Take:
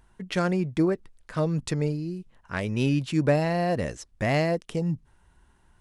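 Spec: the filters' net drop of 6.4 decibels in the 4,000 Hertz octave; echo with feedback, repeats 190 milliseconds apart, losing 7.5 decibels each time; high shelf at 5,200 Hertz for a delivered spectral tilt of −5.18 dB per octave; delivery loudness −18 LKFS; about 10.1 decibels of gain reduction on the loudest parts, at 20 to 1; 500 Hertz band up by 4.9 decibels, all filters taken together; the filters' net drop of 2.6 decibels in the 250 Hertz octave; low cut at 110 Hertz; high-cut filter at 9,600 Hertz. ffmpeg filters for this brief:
ffmpeg -i in.wav -af "highpass=110,lowpass=9600,equalizer=frequency=250:width_type=o:gain=-7,equalizer=frequency=500:width_type=o:gain=8,equalizer=frequency=4000:width_type=o:gain=-5.5,highshelf=frequency=5200:gain=-8,acompressor=threshold=-22dB:ratio=20,aecho=1:1:190|380|570|760|950:0.422|0.177|0.0744|0.0312|0.0131,volume=11dB" out.wav

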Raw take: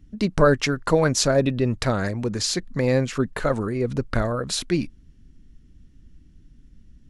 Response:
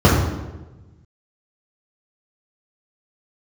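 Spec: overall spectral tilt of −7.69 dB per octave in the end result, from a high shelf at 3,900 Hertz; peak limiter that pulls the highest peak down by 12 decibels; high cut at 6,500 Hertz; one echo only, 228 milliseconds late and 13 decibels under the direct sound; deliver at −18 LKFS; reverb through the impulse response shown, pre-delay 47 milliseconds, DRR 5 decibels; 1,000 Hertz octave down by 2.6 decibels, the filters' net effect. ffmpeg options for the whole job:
-filter_complex "[0:a]lowpass=6500,equalizer=frequency=1000:width_type=o:gain=-3,highshelf=frequency=3900:gain=-6.5,alimiter=limit=-18dB:level=0:latency=1,aecho=1:1:228:0.224,asplit=2[link_01][link_02];[1:a]atrim=start_sample=2205,adelay=47[link_03];[link_02][link_03]afir=irnorm=-1:irlink=0,volume=-30.5dB[link_04];[link_01][link_04]amix=inputs=2:normalize=0,volume=3dB"

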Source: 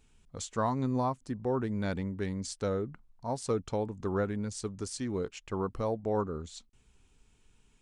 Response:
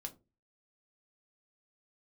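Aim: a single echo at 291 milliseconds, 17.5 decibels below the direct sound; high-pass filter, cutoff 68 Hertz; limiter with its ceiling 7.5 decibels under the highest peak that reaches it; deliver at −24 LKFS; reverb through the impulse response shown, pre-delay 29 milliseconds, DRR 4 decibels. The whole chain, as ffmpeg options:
-filter_complex "[0:a]highpass=68,alimiter=level_in=1dB:limit=-24dB:level=0:latency=1,volume=-1dB,aecho=1:1:291:0.133,asplit=2[link_01][link_02];[1:a]atrim=start_sample=2205,adelay=29[link_03];[link_02][link_03]afir=irnorm=-1:irlink=0,volume=-0.5dB[link_04];[link_01][link_04]amix=inputs=2:normalize=0,volume=10.5dB"

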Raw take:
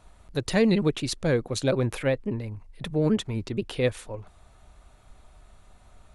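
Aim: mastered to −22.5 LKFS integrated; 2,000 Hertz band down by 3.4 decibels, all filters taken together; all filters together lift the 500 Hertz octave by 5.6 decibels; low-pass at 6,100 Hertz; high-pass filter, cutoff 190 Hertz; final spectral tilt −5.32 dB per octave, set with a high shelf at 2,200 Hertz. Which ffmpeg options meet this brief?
ffmpeg -i in.wav -af "highpass=190,lowpass=6100,equalizer=frequency=500:width_type=o:gain=6.5,equalizer=frequency=2000:width_type=o:gain=-6.5,highshelf=frequency=2200:gain=3.5,volume=1.5dB" out.wav

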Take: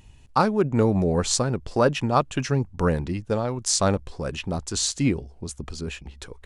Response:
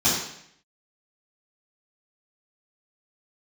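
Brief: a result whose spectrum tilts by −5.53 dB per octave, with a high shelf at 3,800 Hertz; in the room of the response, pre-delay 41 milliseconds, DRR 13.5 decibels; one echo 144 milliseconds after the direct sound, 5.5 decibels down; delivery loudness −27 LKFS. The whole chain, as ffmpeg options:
-filter_complex "[0:a]highshelf=frequency=3800:gain=-5.5,aecho=1:1:144:0.531,asplit=2[link_01][link_02];[1:a]atrim=start_sample=2205,adelay=41[link_03];[link_02][link_03]afir=irnorm=-1:irlink=0,volume=-29dB[link_04];[link_01][link_04]amix=inputs=2:normalize=0,volume=-4dB"

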